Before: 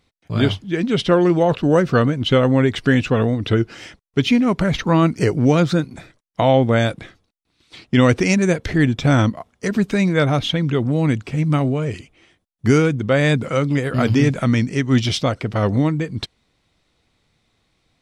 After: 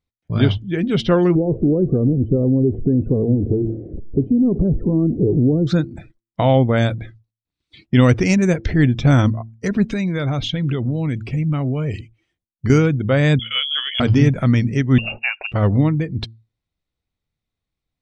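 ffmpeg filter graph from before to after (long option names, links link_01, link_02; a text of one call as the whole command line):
ffmpeg -i in.wav -filter_complex "[0:a]asettb=1/sr,asplit=3[link_01][link_02][link_03];[link_01]atrim=end=1.354[link_04];[link_02]atrim=start=1.35:end=5.67,asetpts=PTS-STARTPTS,afade=type=in:duration=0.004:curve=qsin,afade=type=out:start_time=4.316:duration=0.004:curve=qsin,aeval=exprs='val(0)+0.5*0.0422*sgn(val(0))':channel_layout=same,acompressor=threshold=-16dB:ratio=5:attack=3.2:release=140:knee=1:detection=peak,lowpass=frequency=380:width_type=q:width=2.3[link_05];[link_03]atrim=start=5.666[link_06];[link_04][link_05]acrossfade=duration=0.004:curve1=hsin:curve2=qsin[link_07];[link_07][link_06]acrossfade=duration=0.004:curve1=qsin:curve2=hsin,asettb=1/sr,asplit=3[link_08][link_09][link_10];[link_08]atrim=end=9.904[link_11];[link_09]atrim=start=9.9:end=12.7,asetpts=PTS-STARTPTS,afade=type=in:duration=0.004:curve=qsin,afade=type=out:start_time=2.796:duration=0.004:curve=qsin,highshelf=frequency=2300:gain=4.5,acompressor=threshold=-19dB:ratio=4:attack=3.2:release=140:knee=1:detection=peak[link_12];[link_10]atrim=start=12.696[link_13];[link_11][link_12]acrossfade=duration=0.004:curve1=hsin:curve2=qsin[link_14];[link_14][link_13]acrossfade=duration=0.004:curve1=qsin:curve2=hsin,asettb=1/sr,asplit=3[link_15][link_16][link_17];[link_15]atrim=end=13.394[link_18];[link_16]atrim=start=13.39:end=14,asetpts=PTS-STARTPTS,afade=type=in:duration=0.004:curve=qsin,afade=type=out:start_time=0.606:duration=0.004:curve=qsin,highpass=frequency=170:poles=1,lowpass=frequency=3000:width_type=q:width=0.5098,lowpass=frequency=3000:width_type=q:width=0.6013,lowpass=frequency=3000:width_type=q:width=0.9,lowpass=frequency=3000:width_type=q:width=2.563,afreqshift=-3500[link_19];[link_17]atrim=start=13.996[link_20];[link_18][link_19]acrossfade=duration=0.004:curve1=hsin:curve2=qsin[link_21];[link_21][link_20]acrossfade=duration=0.004:curve1=qsin:curve2=hsin,asettb=1/sr,asplit=3[link_22][link_23][link_24];[link_22]atrim=end=14.984[link_25];[link_23]atrim=start=14.98:end=15.52,asetpts=PTS-STARTPTS,afade=type=in:duration=0.004:curve=qsin,afade=type=out:start_time=0.536:duration=0.004:curve=qsin,highpass=frequency=190:poles=1,lowpass=frequency=2500:width_type=q:width=0.5098,lowpass=frequency=2500:width_type=q:width=0.6013,lowpass=frequency=2500:width_type=q:width=0.9,lowpass=frequency=2500:width_type=q:width=2.563,afreqshift=-2900[link_26];[link_24]atrim=start=15.516[link_27];[link_25][link_26]acrossfade=duration=0.004:curve1=hsin:curve2=qsin[link_28];[link_28][link_27]acrossfade=duration=0.004:curve1=qsin:curve2=hsin,bandreject=frequency=112.2:width_type=h:width=4,bandreject=frequency=224.4:width_type=h:width=4,bandreject=frequency=336.6:width_type=h:width=4,afftdn=noise_reduction=20:noise_floor=-39,lowshelf=frequency=140:gain=11,volume=-2dB" out.wav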